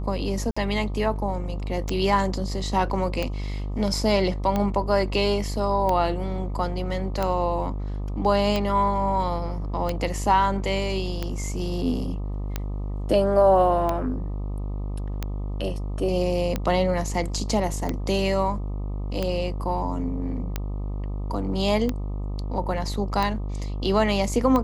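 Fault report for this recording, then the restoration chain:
mains buzz 50 Hz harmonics 25 −29 dBFS
scratch tick 45 rpm −12 dBFS
0:00.51–0:00.56: drop-out 55 ms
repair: click removal
hum removal 50 Hz, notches 25
repair the gap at 0:00.51, 55 ms

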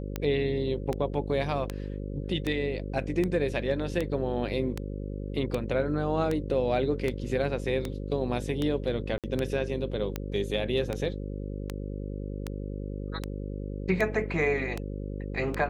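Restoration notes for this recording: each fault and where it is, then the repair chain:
mains buzz 50 Hz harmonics 11 −35 dBFS
scratch tick 78 rpm −16 dBFS
0:09.18–0:09.24: drop-out 57 ms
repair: click removal
hum removal 50 Hz, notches 11
repair the gap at 0:09.18, 57 ms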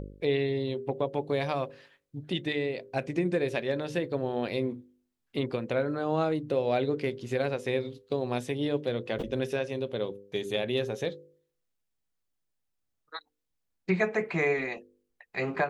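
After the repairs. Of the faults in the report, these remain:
none of them is left

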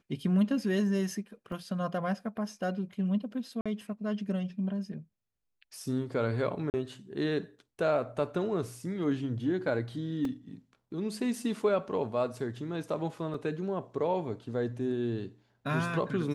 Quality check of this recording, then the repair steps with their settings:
0:01.52: drop-out 3.4 ms
0:03.61–0:03.66: drop-out 46 ms
0:06.70–0:06.74: drop-out 39 ms
0:10.25: drop-out 2.4 ms
0:13.34: drop-out 3.5 ms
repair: repair the gap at 0:01.52, 3.4 ms
repair the gap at 0:03.61, 46 ms
repair the gap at 0:06.70, 39 ms
repair the gap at 0:10.25, 2.4 ms
repair the gap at 0:13.34, 3.5 ms

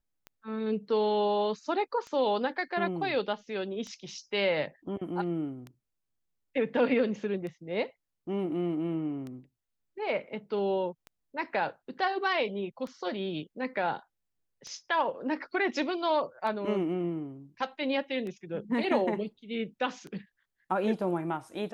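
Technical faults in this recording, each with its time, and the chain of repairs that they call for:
scratch tick 33 1/3 rpm −28 dBFS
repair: click removal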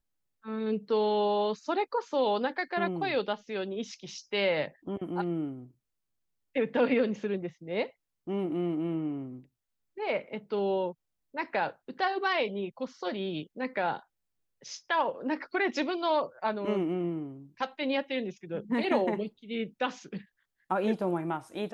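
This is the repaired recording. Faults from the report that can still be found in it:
none of them is left

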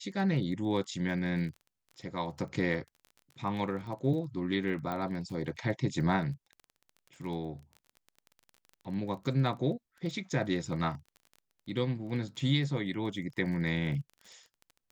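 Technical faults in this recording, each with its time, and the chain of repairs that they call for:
surface crackle 20 per second −41 dBFS
0:04.92: click −23 dBFS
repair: click removal

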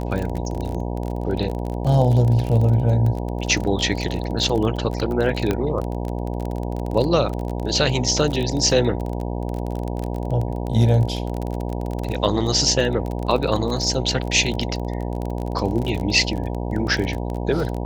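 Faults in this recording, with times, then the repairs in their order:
mains buzz 60 Hz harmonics 16 −26 dBFS
surface crackle 26 per second −24 dBFS
0:05.51: click −8 dBFS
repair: click removal
hum removal 60 Hz, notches 16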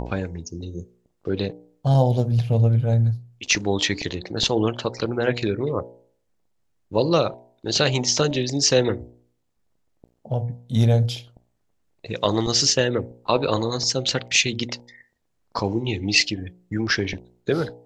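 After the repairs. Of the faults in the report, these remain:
none of them is left

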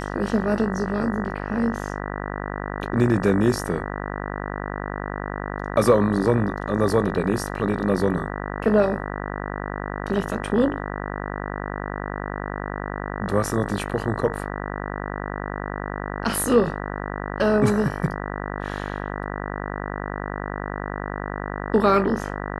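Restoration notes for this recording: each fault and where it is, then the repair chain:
mains buzz 50 Hz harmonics 39 −30 dBFS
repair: hum removal 50 Hz, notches 39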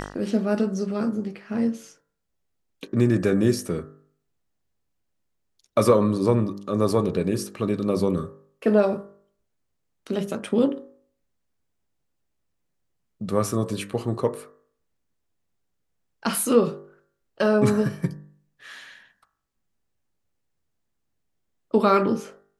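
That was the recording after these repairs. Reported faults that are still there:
none of them is left

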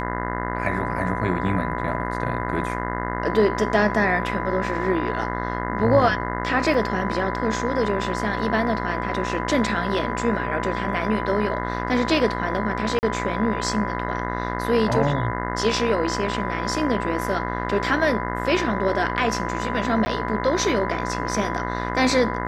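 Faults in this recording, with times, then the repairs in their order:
mains buzz 60 Hz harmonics 35 −28 dBFS
whistle 1,000 Hz −30 dBFS
0:06.74: drop-out 2.2 ms
0:12.99–0:13.03: drop-out 39 ms
0:20.05–0:20.06: drop-out 10 ms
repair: notch filter 1,000 Hz, Q 30
hum removal 60 Hz, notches 35
repair the gap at 0:06.74, 2.2 ms
repair the gap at 0:12.99, 39 ms
repair the gap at 0:20.05, 10 ms

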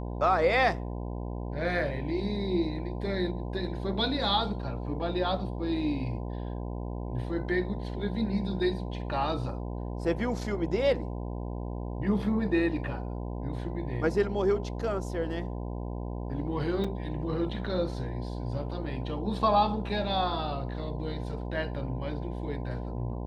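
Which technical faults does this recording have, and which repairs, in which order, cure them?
mains buzz 60 Hz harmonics 17 −35 dBFS
0:16.84: drop-out 4.6 ms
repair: hum removal 60 Hz, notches 17
repair the gap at 0:16.84, 4.6 ms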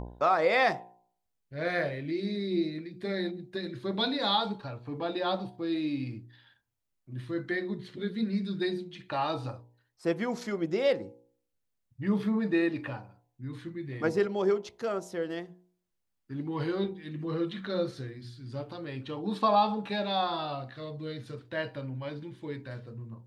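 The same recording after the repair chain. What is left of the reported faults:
none of them is left

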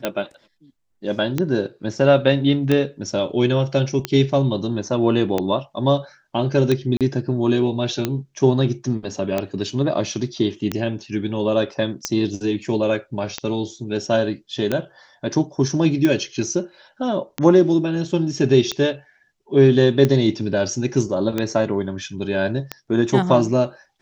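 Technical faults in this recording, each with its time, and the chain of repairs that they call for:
scratch tick 45 rpm −7 dBFS
0:06.97–0:07.01: drop-out 37 ms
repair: click removal
repair the gap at 0:06.97, 37 ms

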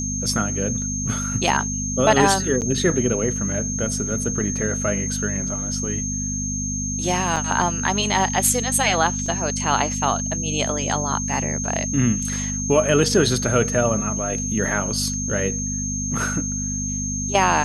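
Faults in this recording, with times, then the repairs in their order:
mains hum 50 Hz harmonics 5 −28 dBFS
whistle 6,400 Hz −26 dBFS
0:02.61–0:02.62: drop-out 8.5 ms
0:07.36–0:07.37: drop-out 5.1 ms
0:09.26: drop-out 2.8 ms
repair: hum removal 50 Hz, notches 5
notch filter 6,400 Hz, Q 30
repair the gap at 0:02.61, 8.5 ms
repair the gap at 0:07.36, 5.1 ms
repair the gap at 0:09.26, 2.8 ms

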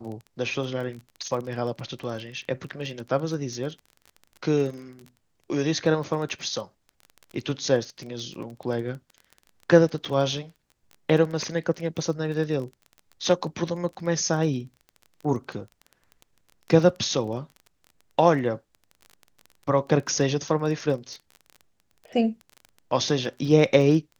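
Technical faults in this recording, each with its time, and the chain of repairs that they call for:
surface crackle 20 per second −33 dBFS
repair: click removal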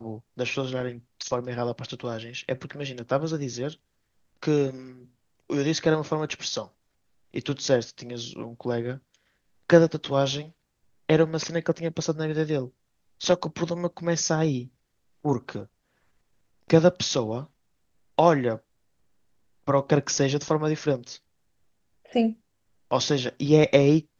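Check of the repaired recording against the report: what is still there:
none of them is left

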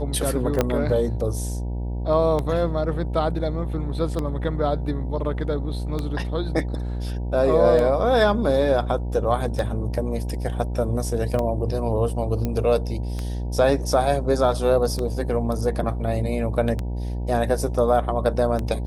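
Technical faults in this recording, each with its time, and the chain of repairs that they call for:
mains buzz 60 Hz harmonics 16 −27 dBFS
scratch tick 33 1/3 rpm −14 dBFS
0:00.61: click −6 dBFS
0:12.45: click −13 dBFS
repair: click removal
hum removal 60 Hz, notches 16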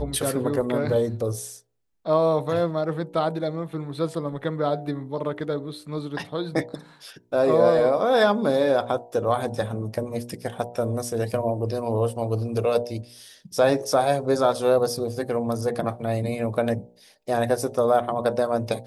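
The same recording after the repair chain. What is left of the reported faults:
0:00.61: click
0:12.45: click

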